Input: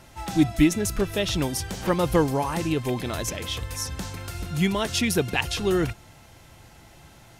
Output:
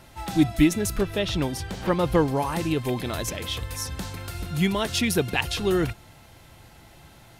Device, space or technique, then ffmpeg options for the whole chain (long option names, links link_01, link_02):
exciter from parts: -filter_complex "[0:a]asplit=2[link_01][link_02];[link_02]highpass=frequency=3900:width=0.5412,highpass=frequency=3900:width=1.3066,asoftclip=type=tanh:threshold=-27dB,highpass=frequency=3400:width=0.5412,highpass=frequency=3400:width=1.3066,volume=-10.5dB[link_03];[link_01][link_03]amix=inputs=2:normalize=0,asettb=1/sr,asplit=3[link_04][link_05][link_06];[link_04]atrim=end=1.034[link_07];[link_05]atrim=start=1.03:end=2.37,asetpts=PTS-STARTPTS,afade=type=in:duration=0.004:curve=qsin,afade=type=out:start_time=1.336:duration=0.004:curve=qsin,highshelf=frequency=6700:gain=-10[link_08];[link_06]atrim=start=2.366[link_09];[link_07][link_08]acrossfade=duration=0.004:curve1=hsin:curve2=qsin[link_10];[link_10][link_09]acrossfade=duration=0.004:curve1=qsin:curve2=hsin"